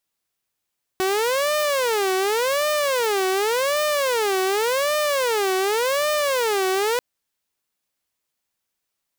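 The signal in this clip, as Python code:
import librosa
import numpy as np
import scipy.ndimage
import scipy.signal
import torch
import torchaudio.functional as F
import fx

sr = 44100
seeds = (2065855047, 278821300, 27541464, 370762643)

y = fx.siren(sr, length_s=5.99, kind='wail', low_hz=375.0, high_hz=604.0, per_s=0.88, wave='saw', level_db=-16.5)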